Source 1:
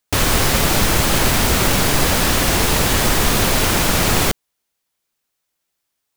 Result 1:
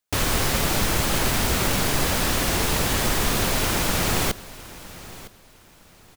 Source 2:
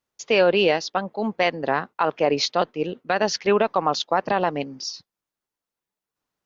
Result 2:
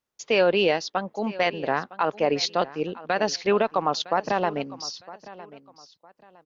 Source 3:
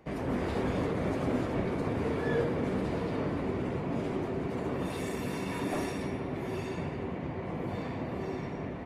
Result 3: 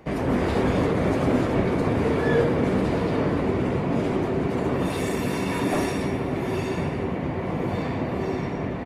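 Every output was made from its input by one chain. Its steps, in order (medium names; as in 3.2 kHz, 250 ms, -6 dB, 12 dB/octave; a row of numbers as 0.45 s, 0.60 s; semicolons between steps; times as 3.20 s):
feedback delay 959 ms, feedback 28%, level -18 dB; peak normalisation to -9 dBFS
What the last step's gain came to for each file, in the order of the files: -6.5 dB, -2.5 dB, +9.0 dB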